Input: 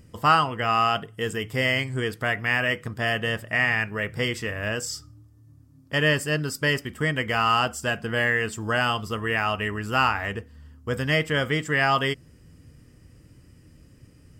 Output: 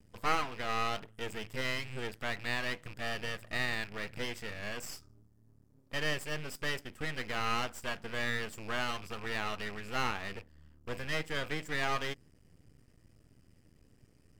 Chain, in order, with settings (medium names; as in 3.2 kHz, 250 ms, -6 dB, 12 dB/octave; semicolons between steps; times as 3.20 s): rattle on loud lows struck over -37 dBFS, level -29 dBFS; half-wave rectifier; trim -7.5 dB